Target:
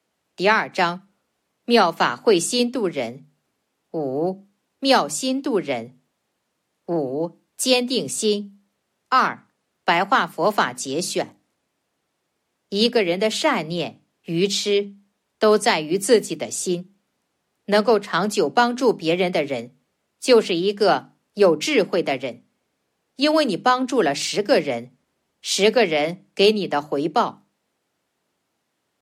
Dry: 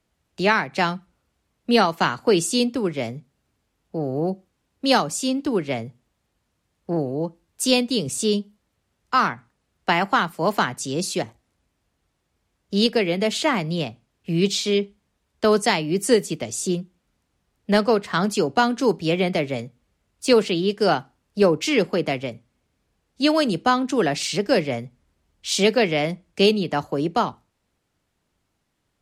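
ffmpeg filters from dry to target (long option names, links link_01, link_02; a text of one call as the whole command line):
ffmpeg -i in.wav -filter_complex "[0:a]acrossover=split=300|730|5400[link_01][link_02][link_03][link_04];[link_02]crystalizer=i=9.5:c=0[link_05];[link_01][link_05][link_03][link_04]amix=inputs=4:normalize=0,highpass=200,bandreject=frequency=50:width_type=h:width=6,bandreject=frequency=100:width_type=h:width=6,bandreject=frequency=150:width_type=h:width=6,bandreject=frequency=200:width_type=h:width=6,bandreject=frequency=250:width_type=h:width=6,bandreject=frequency=300:width_type=h:width=6,atempo=1,volume=1.5dB" -ar 44100 -c:a aac -b:a 96k out.aac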